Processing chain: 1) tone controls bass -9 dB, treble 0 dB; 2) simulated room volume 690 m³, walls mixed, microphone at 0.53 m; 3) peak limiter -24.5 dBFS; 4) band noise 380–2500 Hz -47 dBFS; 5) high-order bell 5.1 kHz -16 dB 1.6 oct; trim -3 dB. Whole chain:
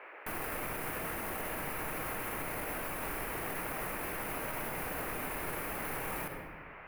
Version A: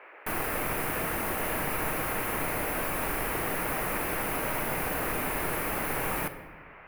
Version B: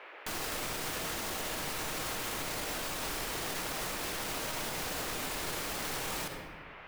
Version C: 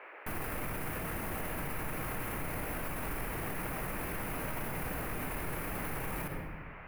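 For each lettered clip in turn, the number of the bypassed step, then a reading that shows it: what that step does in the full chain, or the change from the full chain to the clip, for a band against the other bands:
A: 3, mean gain reduction 7.0 dB; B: 5, 4 kHz band +12.5 dB; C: 1, 125 Hz band +7.5 dB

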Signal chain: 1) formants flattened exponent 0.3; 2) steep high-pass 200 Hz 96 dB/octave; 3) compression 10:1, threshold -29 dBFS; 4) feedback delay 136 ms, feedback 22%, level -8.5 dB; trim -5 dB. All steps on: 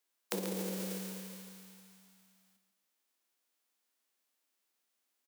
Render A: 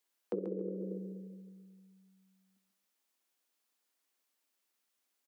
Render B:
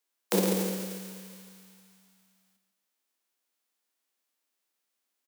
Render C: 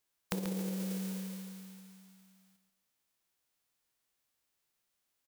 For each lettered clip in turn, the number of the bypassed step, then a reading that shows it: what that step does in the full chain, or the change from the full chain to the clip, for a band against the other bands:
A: 1, crest factor change -13.0 dB; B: 3, mean gain reduction 3.0 dB; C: 2, 250 Hz band +6.5 dB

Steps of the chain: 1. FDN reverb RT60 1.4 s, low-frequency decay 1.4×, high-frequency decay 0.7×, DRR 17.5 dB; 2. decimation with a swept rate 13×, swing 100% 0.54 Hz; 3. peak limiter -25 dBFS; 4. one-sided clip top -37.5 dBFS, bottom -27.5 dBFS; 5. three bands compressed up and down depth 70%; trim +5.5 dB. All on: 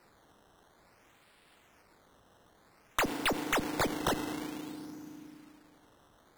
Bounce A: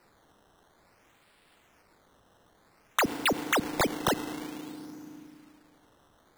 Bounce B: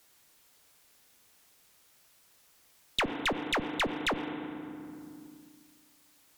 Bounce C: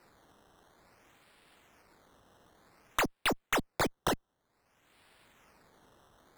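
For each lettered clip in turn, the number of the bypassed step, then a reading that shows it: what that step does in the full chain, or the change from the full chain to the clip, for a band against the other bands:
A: 4, distortion -8 dB; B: 2, crest factor change -3.0 dB; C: 1, momentary loudness spread change -13 LU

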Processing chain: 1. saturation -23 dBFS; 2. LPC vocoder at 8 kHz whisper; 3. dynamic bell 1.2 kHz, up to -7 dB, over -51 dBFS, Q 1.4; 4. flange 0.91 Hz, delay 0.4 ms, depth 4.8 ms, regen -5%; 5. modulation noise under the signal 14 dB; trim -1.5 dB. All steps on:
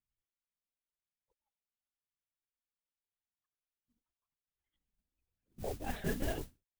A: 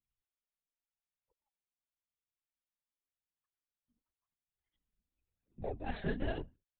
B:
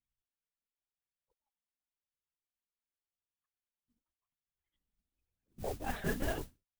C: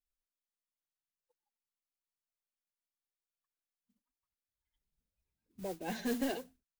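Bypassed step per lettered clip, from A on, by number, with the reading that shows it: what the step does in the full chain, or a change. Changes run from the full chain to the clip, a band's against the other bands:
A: 5, 4 kHz band -3.0 dB; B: 3, 2 kHz band +3.0 dB; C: 2, 125 Hz band -11.0 dB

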